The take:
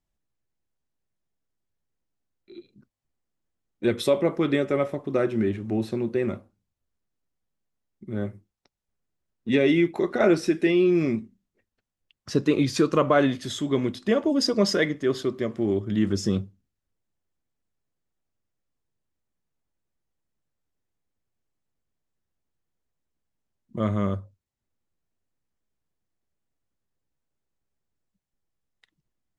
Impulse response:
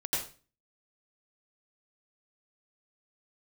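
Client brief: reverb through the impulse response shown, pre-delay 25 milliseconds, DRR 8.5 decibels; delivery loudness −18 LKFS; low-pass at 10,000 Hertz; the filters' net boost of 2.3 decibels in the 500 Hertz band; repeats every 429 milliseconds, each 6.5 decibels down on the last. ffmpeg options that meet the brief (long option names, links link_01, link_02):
-filter_complex "[0:a]lowpass=10000,equalizer=frequency=500:width_type=o:gain=3,aecho=1:1:429|858|1287|1716|2145|2574:0.473|0.222|0.105|0.0491|0.0231|0.0109,asplit=2[link_01][link_02];[1:a]atrim=start_sample=2205,adelay=25[link_03];[link_02][link_03]afir=irnorm=-1:irlink=0,volume=-14.5dB[link_04];[link_01][link_04]amix=inputs=2:normalize=0,volume=4dB"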